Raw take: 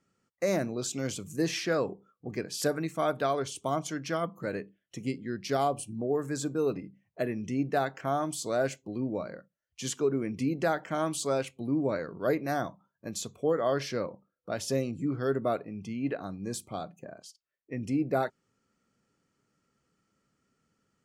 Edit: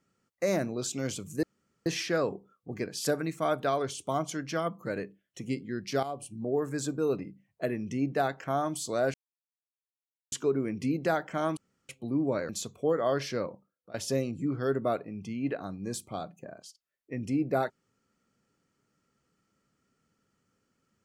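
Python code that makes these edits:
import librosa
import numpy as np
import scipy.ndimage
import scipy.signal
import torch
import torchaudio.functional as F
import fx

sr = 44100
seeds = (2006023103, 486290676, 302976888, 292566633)

y = fx.edit(x, sr, fx.insert_room_tone(at_s=1.43, length_s=0.43),
    fx.fade_in_from(start_s=5.6, length_s=0.47, floor_db=-12.5),
    fx.silence(start_s=8.71, length_s=1.18),
    fx.room_tone_fill(start_s=11.14, length_s=0.32),
    fx.cut(start_s=12.06, length_s=1.03),
    fx.fade_out_to(start_s=14.06, length_s=0.48, curve='qsin', floor_db=-22.0), tone=tone)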